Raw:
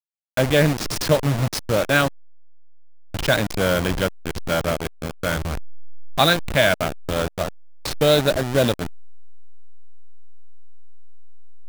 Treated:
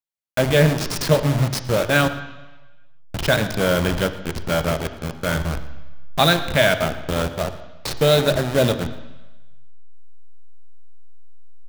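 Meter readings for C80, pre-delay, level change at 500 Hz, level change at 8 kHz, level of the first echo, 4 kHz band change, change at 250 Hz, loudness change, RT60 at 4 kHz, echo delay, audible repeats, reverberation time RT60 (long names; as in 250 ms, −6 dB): 12.5 dB, 3 ms, +1.0 dB, 0.0 dB, −19.5 dB, +0.5 dB, +1.0 dB, +1.0 dB, 1.2 s, 116 ms, 1, 1.1 s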